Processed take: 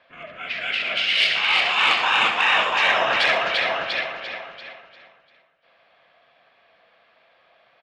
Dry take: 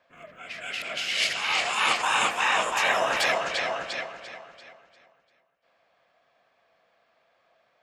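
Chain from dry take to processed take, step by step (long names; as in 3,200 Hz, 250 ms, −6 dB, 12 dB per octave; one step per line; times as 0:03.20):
low-pass filter 3,700 Hz 24 dB per octave
high-shelf EQ 2,500 Hz +11 dB
in parallel at −1 dB: downward compressor 5 to 1, threshold −31 dBFS, peak gain reduction 14 dB
on the sum: soft clipping −7 dBFS, distortion −25 dB
multi-tap delay 65/117 ms −9/−14 dB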